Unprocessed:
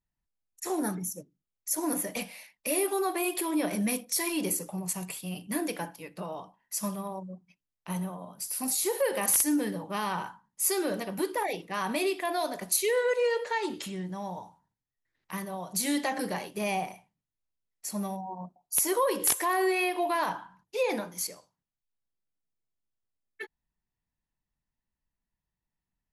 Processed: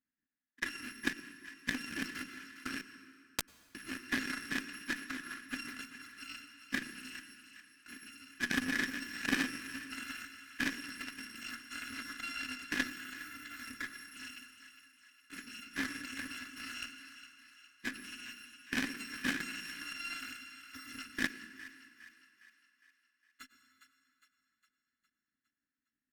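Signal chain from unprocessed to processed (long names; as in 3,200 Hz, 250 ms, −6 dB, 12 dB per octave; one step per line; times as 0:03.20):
samples in bit-reversed order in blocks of 256 samples
in parallel at +3 dB: compressor whose output falls as the input rises −33 dBFS, ratio −0.5
on the sum: pair of resonant band-passes 670 Hz, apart 2.7 octaves
on a send: echo with a time of its own for lows and highs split 660 Hz, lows 116 ms, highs 409 ms, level −10 dB
0:02.81–0:03.75: on the sum: bit-depth reduction 6 bits, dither none
dense smooth reverb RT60 2.3 s, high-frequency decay 0.75×, pre-delay 85 ms, DRR 9 dB
harmonic generator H 3 −12 dB, 4 −30 dB, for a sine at −28.5 dBFS
level +15 dB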